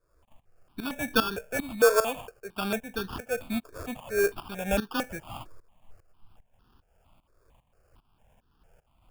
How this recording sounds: tremolo saw up 2.5 Hz, depth 85%; aliases and images of a low sample rate 2000 Hz, jitter 0%; notches that jump at a steady rate 4.4 Hz 810–2200 Hz

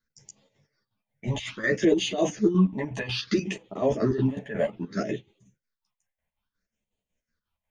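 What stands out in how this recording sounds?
phasing stages 6, 0.61 Hz, lowest notch 330–1500 Hz; chopped level 5.5 Hz, depth 60%, duty 60%; a shimmering, thickened sound

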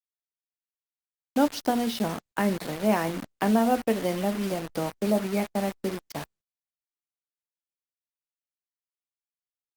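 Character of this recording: a quantiser's noise floor 6-bit, dither none; Opus

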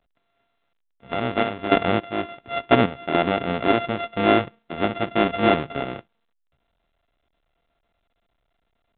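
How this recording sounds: a buzz of ramps at a fixed pitch in blocks of 64 samples; random-step tremolo, depth 70%; A-law

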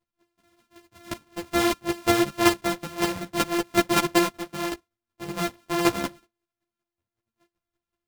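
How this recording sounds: a buzz of ramps at a fixed pitch in blocks of 128 samples; chopped level 5.3 Hz, depth 60%, duty 15%; a shimmering, thickened sound

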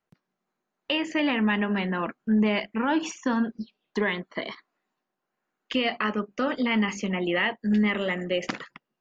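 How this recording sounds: noise floor -84 dBFS; spectral tilt -3.5 dB/oct

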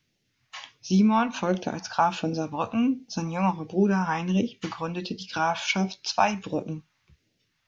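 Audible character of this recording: phasing stages 2, 1.4 Hz, lowest notch 360–1100 Hz

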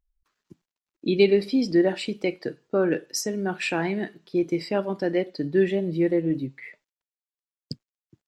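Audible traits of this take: noise floor -96 dBFS; spectral tilt -5.0 dB/oct

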